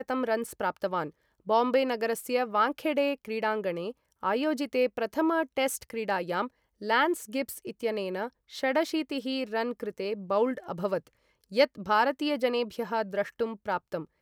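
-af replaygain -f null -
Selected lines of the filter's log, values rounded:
track_gain = +8.7 dB
track_peak = 0.246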